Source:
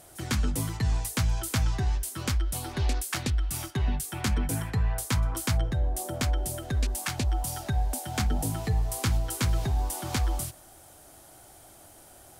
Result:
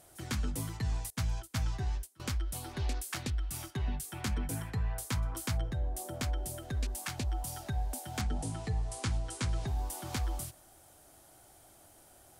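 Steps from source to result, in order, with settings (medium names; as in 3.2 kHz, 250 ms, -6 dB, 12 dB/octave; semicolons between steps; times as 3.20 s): 1.10–2.20 s: gate -29 dBFS, range -22 dB; 8.21–9.67 s: steep low-pass 10 kHz 48 dB/octave; trim -7 dB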